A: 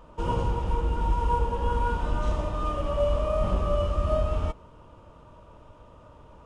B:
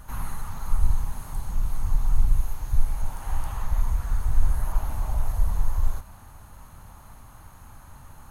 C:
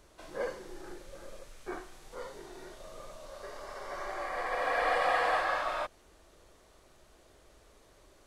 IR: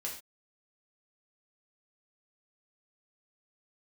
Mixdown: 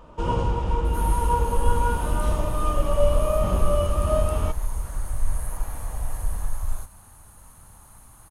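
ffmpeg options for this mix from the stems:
-filter_complex "[0:a]volume=3dB[a];[1:a]equalizer=f=9.4k:t=o:w=0.65:g=15,adelay=850,volume=-4dB[b];[2:a]acompressor=threshold=-40dB:ratio=6,adelay=950,volume=-9dB[c];[a][b][c]amix=inputs=3:normalize=0"

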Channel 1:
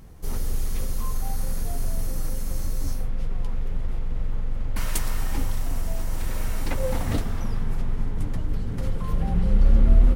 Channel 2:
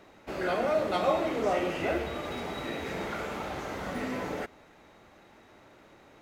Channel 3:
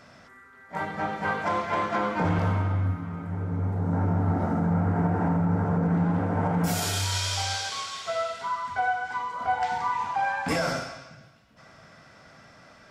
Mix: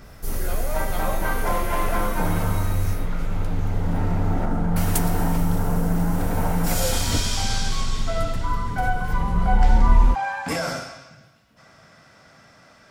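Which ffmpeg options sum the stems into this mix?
-filter_complex "[0:a]adynamicequalizer=threshold=0.00282:dfrequency=3200:dqfactor=0.7:tfrequency=3200:tqfactor=0.7:attack=5:release=100:ratio=0.375:range=2:mode=cutabove:tftype=highshelf,volume=0.5dB[a];[1:a]volume=-5dB[b];[2:a]volume=0dB[c];[a][b][c]amix=inputs=3:normalize=0,highshelf=f=8.8k:g=9.5"

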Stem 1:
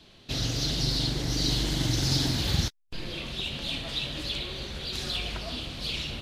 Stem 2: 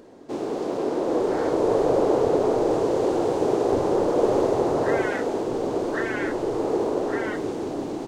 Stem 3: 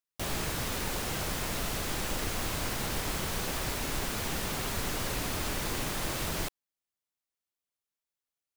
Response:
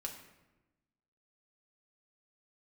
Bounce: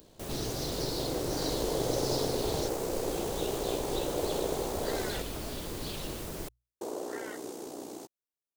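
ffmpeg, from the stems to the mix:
-filter_complex "[0:a]acrossover=split=280[a][b];[a]acompressor=threshold=-43dB:ratio=2[c];[c][b]amix=inputs=2:normalize=0,equalizer=f=2.3k:w=0.59:g=-5.5,volume=-2.5dB[d];[1:a]aemphasis=mode=production:type=riaa,tremolo=f=61:d=0.519,volume=-5.5dB,asplit=3[e][f][g];[e]atrim=end=5.22,asetpts=PTS-STARTPTS,afade=t=out:st=5.216:d=0.004:c=hsin[h];[f]atrim=start=5.22:end=6.81,asetpts=PTS-STARTPTS,volume=0[i];[g]atrim=start=6.81,asetpts=PTS-STARTPTS,afade=t=in:d=0.004:c=hsin[j];[h][i][j]concat=n=3:v=0:a=1[k];[2:a]equalizer=f=410:w=1.2:g=6.5,bandreject=f=60:t=h:w=6,bandreject=f=120:t=h:w=6,volume=-6dB[l];[d][k][l]amix=inputs=3:normalize=0,equalizer=f=2.1k:w=0.46:g=-6.5"

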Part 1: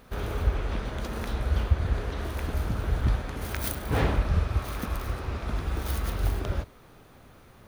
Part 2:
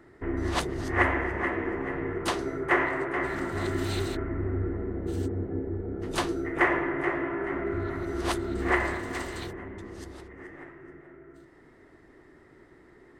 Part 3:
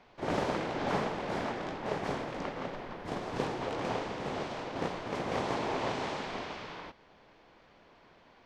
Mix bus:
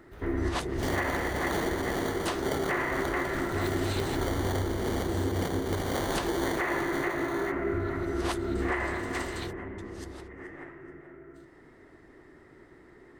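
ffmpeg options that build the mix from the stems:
-filter_complex "[0:a]volume=-16dB[a];[1:a]volume=1dB[b];[2:a]acrusher=samples=17:mix=1:aa=0.000001,adelay=600,volume=2dB[c];[a][b][c]amix=inputs=3:normalize=0,alimiter=limit=-19.5dB:level=0:latency=1:release=160"

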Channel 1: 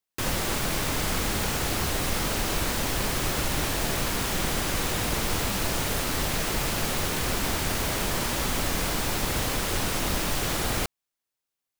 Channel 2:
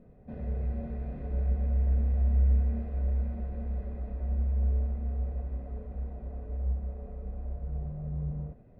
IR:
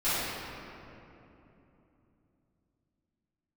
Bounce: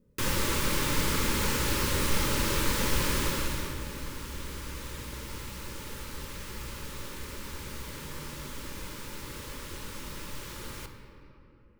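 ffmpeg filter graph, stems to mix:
-filter_complex "[0:a]volume=-2.5dB,afade=t=out:st=3.13:d=0.62:silence=0.223872,asplit=2[a][b];[b]volume=-17dB[c];[1:a]acompressor=threshold=-34dB:ratio=6,volume=-9.5dB[d];[2:a]atrim=start_sample=2205[e];[c][e]afir=irnorm=-1:irlink=0[f];[a][d][f]amix=inputs=3:normalize=0,asuperstop=centerf=710:order=20:qfactor=3.4"

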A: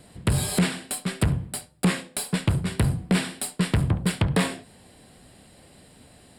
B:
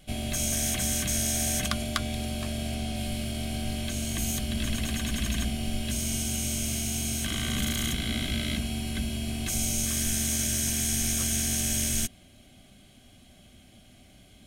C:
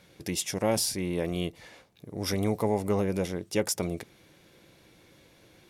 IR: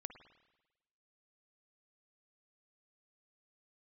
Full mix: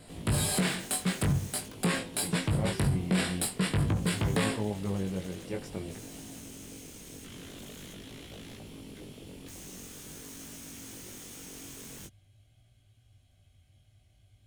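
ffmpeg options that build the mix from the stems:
-filter_complex "[0:a]volume=2.5dB[a];[1:a]lowshelf=f=150:t=q:w=3:g=10.5,aeval=exprs='0.0596*(abs(mod(val(0)/0.0596+3,4)-2)-1)':c=same,volume=-12.5dB[b];[2:a]bass=f=250:g=8,treble=f=4k:g=-14,adelay=1950,volume=-7dB[c];[a][b][c]amix=inputs=3:normalize=0,flanger=delay=18:depth=3.8:speed=0.47,lowshelf=f=62:g=-7.5,alimiter=limit=-18.5dB:level=0:latency=1:release=32"

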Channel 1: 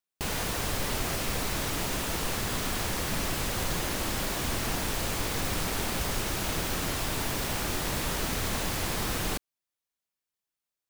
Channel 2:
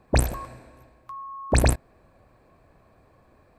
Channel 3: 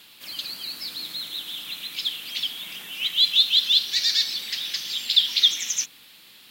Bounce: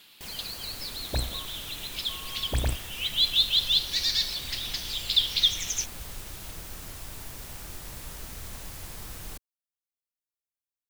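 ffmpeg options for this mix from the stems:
-filter_complex "[0:a]highshelf=f=6.2k:g=8.5,volume=-14.5dB[a];[1:a]adelay=1000,volume=-11.5dB[b];[2:a]volume=-4.5dB[c];[a][b][c]amix=inputs=3:normalize=0,asubboost=boost=2:cutoff=140"

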